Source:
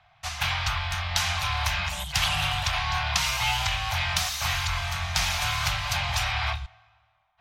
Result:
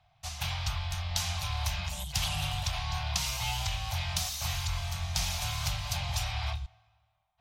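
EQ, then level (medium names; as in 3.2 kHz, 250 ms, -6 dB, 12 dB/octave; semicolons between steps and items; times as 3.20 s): peaking EQ 1.6 kHz -12 dB 2 oct; -2.0 dB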